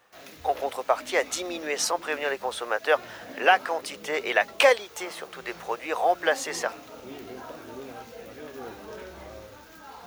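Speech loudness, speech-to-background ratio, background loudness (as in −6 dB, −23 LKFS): −26.0 LKFS, 17.5 dB, −43.5 LKFS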